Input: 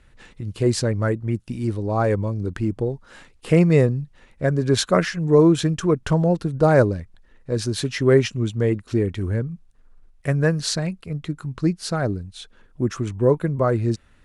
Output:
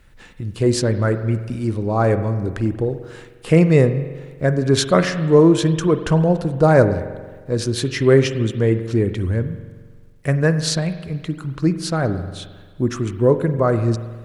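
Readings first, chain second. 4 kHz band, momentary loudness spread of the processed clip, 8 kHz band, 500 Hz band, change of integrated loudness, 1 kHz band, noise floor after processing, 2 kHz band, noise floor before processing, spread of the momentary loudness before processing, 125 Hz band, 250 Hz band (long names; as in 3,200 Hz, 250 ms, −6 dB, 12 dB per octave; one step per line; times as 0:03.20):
+2.5 dB, 14 LU, +2.5 dB, +3.0 dB, +3.0 dB, +3.0 dB, −45 dBFS, +3.0 dB, −54 dBFS, 13 LU, +3.0 dB, +3.0 dB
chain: bit reduction 12 bits
spring reverb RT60 1.5 s, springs 44 ms, chirp 65 ms, DRR 10 dB
level +2.5 dB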